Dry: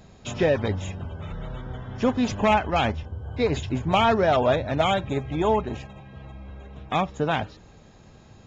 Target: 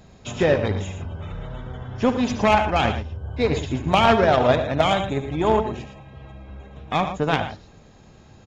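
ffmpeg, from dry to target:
-af "aecho=1:1:72.89|113.7:0.282|0.355,aeval=exprs='0.422*(cos(1*acos(clip(val(0)/0.422,-1,1)))-cos(1*PI/2))+0.0668*(cos(3*acos(clip(val(0)/0.422,-1,1)))-cos(3*PI/2))':c=same,volume=6dB"

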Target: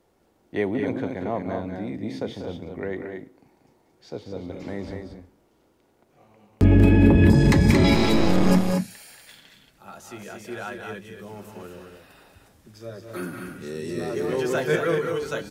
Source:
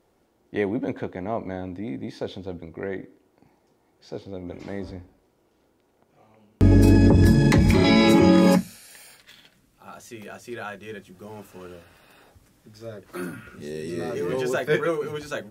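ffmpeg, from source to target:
-filter_complex "[0:a]asettb=1/sr,asplit=3[a][b][c];[a]atrim=end=2.204[d];[b]atrim=start=2.2:end=2.69,asetpts=PTS-STARTPTS,afade=t=in:d=0.004:c=qsin,afade=t=out:st=0.486:d=0.004:c=qsin,bandreject=f=4.1k:w=6.6[e];[c]atrim=start=2.686[f];[d][e]acrossfade=d=0.004:c1=hsin:c2=qsin[g];[g][f]acrossfade=d=0.004:c1=qsin:c2=hsin,asettb=1/sr,asplit=3[h][i][j];[h]atrim=end=6.644[k];[i]atrim=start=6.64:end=7.3,asetpts=PTS-STARTPTS,afade=t=in:d=0.004:c=qsin,afade=t=out:st=0.656:d=0.004:c=qsin,highshelf=f=3.9k:t=q:w=3:g=-11[l];[j]atrim=start=7.296[m];[k][l]acrossfade=d=0.004:c1=hsin:c2=qsin[n];[n][m]acrossfade=d=0.004:c1=qsin:c2=hsin,acrossover=split=250[o][p];[p]acompressor=threshold=-18dB:ratio=6[q];[o][q]amix=inputs=2:normalize=0,asettb=1/sr,asplit=3[r][s][t];[r]atrim=end=7.944[u];[s]atrim=start=7.94:end=8.51,asetpts=PTS-STARTPTS,afade=t=in:d=0.004:c=qsin,afade=t=out:st=0.566:d=0.004:c=qsin,aeval=exprs='max(val(0),0)':c=same[v];[t]atrim=start=8.506[w];[u][v]acrossfade=d=0.004:c1=hsin:c2=qsin[x];[x][w]acrossfade=d=0.004:c1=qsin:c2=hsin,asplit=2[y][z];[z]aecho=0:1:189.5|227.4:0.355|0.501[aa];[y][aa]amix=inputs=2:normalize=0"

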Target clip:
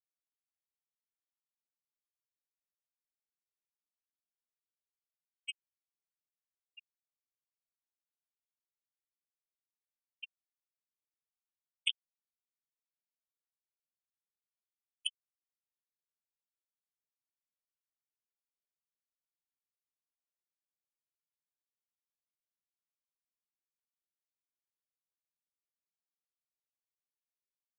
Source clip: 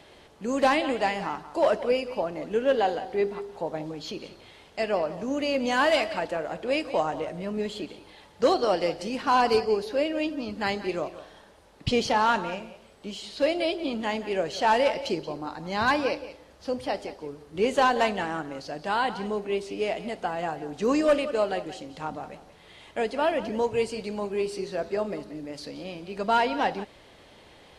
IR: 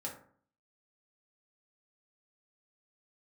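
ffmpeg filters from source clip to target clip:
-af "acompressor=threshold=-27dB:ratio=8,asuperpass=centerf=3000:order=12:qfactor=3.1,aecho=1:1:4.3:0.4,acrusher=bits=4:mix=0:aa=0.5,flanger=delay=6.5:depth=6.4:regen=-29:speed=1.1:shape=sinusoidal,afftfilt=real='re*gte(hypot(re,im),0.01)':imag='im*gte(hypot(re,im),0.01)':win_size=1024:overlap=0.75,volume=17.5dB"

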